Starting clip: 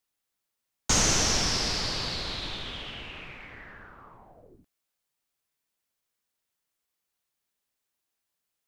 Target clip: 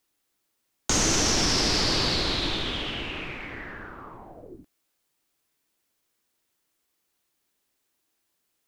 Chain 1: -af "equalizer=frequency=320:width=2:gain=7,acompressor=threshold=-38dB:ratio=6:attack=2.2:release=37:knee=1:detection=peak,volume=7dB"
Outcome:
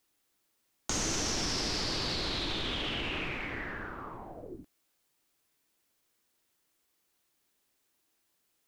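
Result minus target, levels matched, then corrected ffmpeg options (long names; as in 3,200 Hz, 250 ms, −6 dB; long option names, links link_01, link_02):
downward compressor: peak gain reduction +9 dB
-af "equalizer=frequency=320:width=2:gain=7,acompressor=threshold=-27dB:ratio=6:attack=2.2:release=37:knee=1:detection=peak,volume=7dB"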